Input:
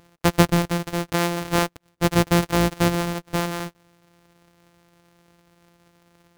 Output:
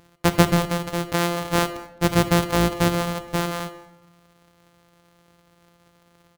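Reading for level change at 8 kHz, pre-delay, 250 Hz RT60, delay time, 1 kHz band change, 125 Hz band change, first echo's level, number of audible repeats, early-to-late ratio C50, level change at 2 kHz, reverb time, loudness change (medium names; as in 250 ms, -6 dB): 0.0 dB, 28 ms, 1.0 s, 213 ms, +1.0 dB, 0.0 dB, -22.5 dB, 1, 11.0 dB, 0.0 dB, 0.95 s, 0.0 dB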